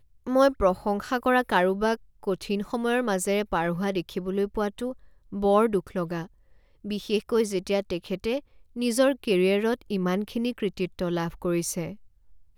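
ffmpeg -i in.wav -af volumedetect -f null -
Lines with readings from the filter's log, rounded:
mean_volume: -26.5 dB
max_volume: -8.6 dB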